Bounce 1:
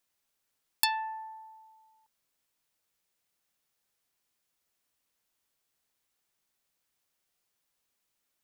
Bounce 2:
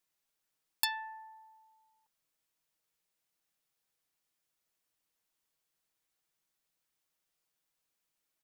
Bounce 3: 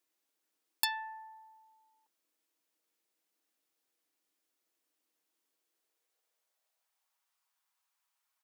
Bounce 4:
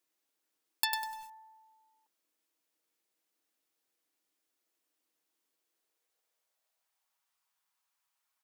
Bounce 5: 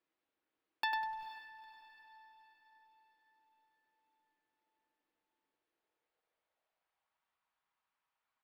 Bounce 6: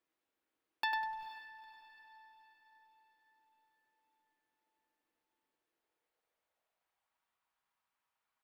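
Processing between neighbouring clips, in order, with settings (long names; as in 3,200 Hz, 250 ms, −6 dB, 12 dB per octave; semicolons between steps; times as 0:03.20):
comb filter 6.3 ms, depth 37%; level −4.5 dB
high-pass filter sweep 300 Hz → 970 Hz, 0:05.52–0:07.30
feedback echo at a low word length 99 ms, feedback 35%, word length 8 bits, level −5.5 dB
high-frequency loss of the air 370 metres; feedback delay with all-pass diffusion 463 ms, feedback 48%, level −14.5 dB; level +2.5 dB
convolution reverb RT60 0.40 s, pre-delay 4 ms, DRR 18.5 dB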